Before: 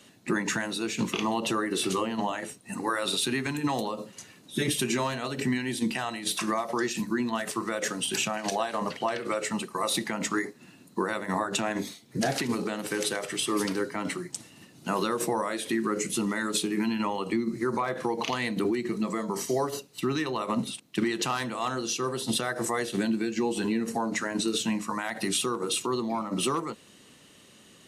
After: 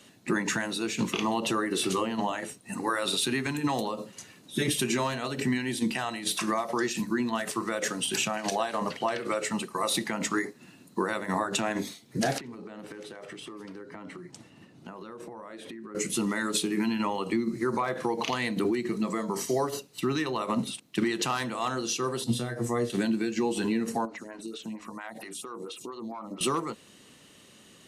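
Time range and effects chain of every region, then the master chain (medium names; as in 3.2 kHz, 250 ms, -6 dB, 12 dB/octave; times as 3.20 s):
12.38–15.95 s: low-pass 1.7 kHz 6 dB/octave + compression 16:1, threshold -38 dBFS
22.24–22.90 s: bass shelf 330 Hz +12 dB + feedback comb 120 Hz, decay 0.18 s, mix 90%
24.05–26.41 s: compression 5:1, threshold -33 dBFS + lamp-driven phase shifter 4.4 Hz
whole clip: none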